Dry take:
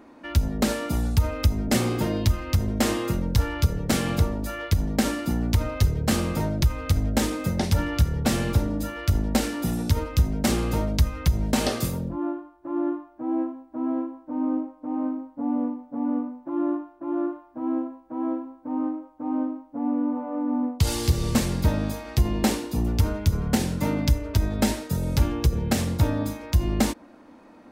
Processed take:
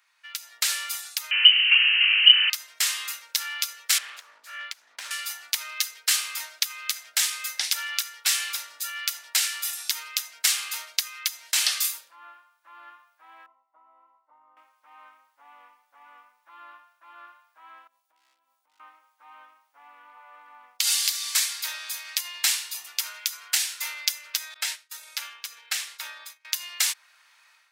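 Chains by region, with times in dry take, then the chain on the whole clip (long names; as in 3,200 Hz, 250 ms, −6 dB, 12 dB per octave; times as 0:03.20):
0:01.31–0:02.50: linear delta modulator 32 kbit/s, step −19.5 dBFS + voice inversion scrambler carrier 3,000 Hz
0:03.98–0:05.11: spectral tilt −4 dB per octave + downward compressor 2 to 1, threshold −21 dBFS + highs frequency-modulated by the lows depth 0.52 ms
0:13.46–0:14.57: downward compressor 5 to 1, threshold −29 dBFS + Savitzky-Golay smoothing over 65 samples
0:17.87–0:18.80: gain into a clipping stage and back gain 24 dB + parametric band 1,600 Hz −13.5 dB 1.8 octaves + downward compressor 16 to 1, threshold −40 dBFS
0:21.09–0:21.59: Butterworth high-pass 540 Hz 72 dB per octave + notch filter 2,800 Hz
0:24.54–0:26.45: downward expander −24 dBFS + high-shelf EQ 4,000 Hz −8.5 dB
whole clip: Bessel high-pass filter 2,500 Hz, order 4; automatic gain control gain up to 10 dB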